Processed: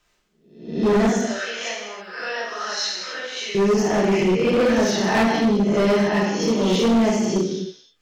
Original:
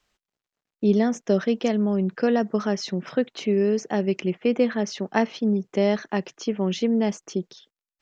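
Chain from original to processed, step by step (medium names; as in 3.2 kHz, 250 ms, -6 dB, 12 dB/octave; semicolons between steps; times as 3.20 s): reverse spectral sustain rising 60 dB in 0.59 s; 1.07–3.55 s: high-pass 1.3 kHz 12 dB/octave; gated-style reverb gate 350 ms falling, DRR -5.5 dB; hard clipper -14.5 dBFS, distortion -9 dB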